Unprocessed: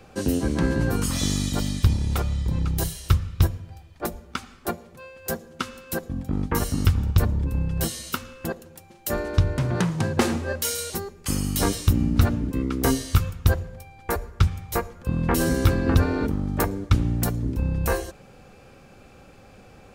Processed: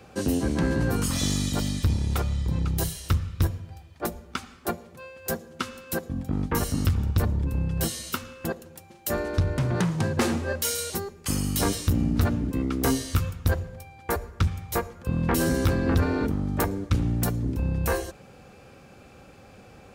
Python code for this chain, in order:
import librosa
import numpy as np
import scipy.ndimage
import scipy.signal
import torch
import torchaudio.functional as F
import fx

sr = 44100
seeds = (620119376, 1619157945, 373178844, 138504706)

y = 10.0 ** (-14.5 / 20.0) * np.tanh(x / 10.0 ** (-14.5 / 20.0))
y = scipy.signal.sosfilt(scipy.signal.butter(2, 47.0, 'highpass', fs=sr, output='sos'), y)